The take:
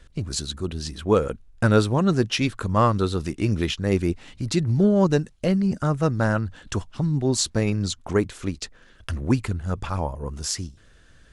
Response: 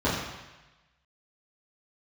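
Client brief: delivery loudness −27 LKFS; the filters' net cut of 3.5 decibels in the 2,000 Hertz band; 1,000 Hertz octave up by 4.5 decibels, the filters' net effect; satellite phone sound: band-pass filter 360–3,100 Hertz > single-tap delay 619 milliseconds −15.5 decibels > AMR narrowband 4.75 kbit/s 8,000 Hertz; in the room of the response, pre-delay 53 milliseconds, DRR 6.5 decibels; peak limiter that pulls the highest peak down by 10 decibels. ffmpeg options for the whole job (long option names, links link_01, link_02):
-filter_complex "[0:a]equalizer=frequency=1000:width_type=o:gain=8,equalizer=frequency=2000:width_type=o:gain=-8.5,alimiter=limit=-13.5dB:level=0:latency=1,asplit=2[link_01][link_02];[1:a]atrim=start_sample=2205,adelay=53[link_03];[link_02][link_03]afir=irnorm=-1:irlink=0,volume=-21dB[link_04];[link_01][link_04]amix=inputs=2:normalize=0,highpass=360,lowpass=3100,aecho=1:1:619:0.168,volume=3.5dB" -ar 8000 -c:a libopencore_amrnb -b:a 4750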